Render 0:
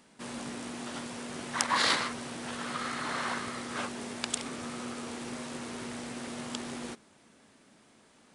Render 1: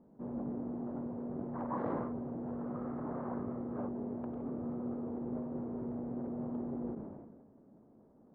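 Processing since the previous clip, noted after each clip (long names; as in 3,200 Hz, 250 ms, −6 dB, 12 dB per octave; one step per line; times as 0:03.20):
Bessel low-pass filter 510 Hz, order 4
level that may fall only so fast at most 38 dB per second
level +2.5 dB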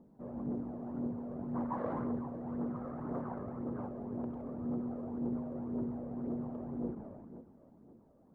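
feedback delay that plays each chunk backwards 285 ms, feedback 49%, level −13 dB
phase shifter 1.9 Hz, delay 1.9 ms, feedback 43%
level −1.5 dB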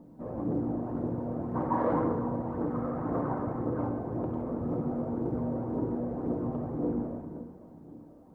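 convolution reverb RT60 1.1 s, pre-delay 3 ms, DRR 2.5 dB
level +7 dB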